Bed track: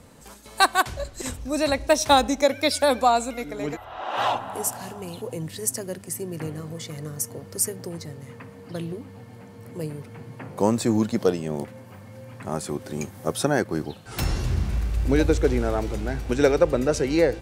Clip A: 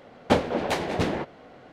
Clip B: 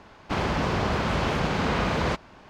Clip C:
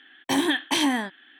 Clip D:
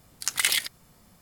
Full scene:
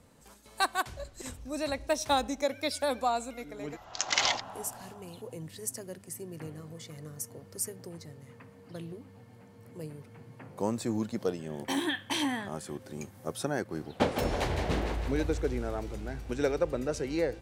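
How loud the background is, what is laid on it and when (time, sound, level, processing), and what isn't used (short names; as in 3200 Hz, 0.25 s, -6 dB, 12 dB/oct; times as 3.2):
bed track -10 dB
3.73 add D -4 dB + careless resampling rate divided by 3×, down none, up filtered
11.39 add C -8 dB
13.7 add A -6.5 dB + thinning echo 0.16 s, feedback 58%, level -5.5 dB
not used: B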